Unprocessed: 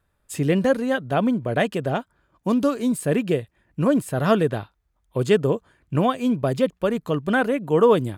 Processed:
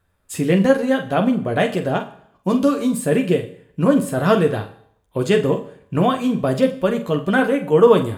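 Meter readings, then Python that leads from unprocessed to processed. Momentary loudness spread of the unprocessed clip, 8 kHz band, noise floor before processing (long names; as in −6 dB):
8 LU, +3.5 dB, −70 dBFS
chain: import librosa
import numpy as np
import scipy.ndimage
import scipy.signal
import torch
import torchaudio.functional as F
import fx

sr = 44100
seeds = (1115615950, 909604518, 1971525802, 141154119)

y = fx.room_early_taps(x, sr, ms=(11, 46), db=(-5.5, -9.0))
y = fx.rev_schroeder(y, sr, rt60_s=0.64, comb_ms=30, drr_db=12.0)
y = F.gain(torch.from_numpy(y), 2.0).numpy()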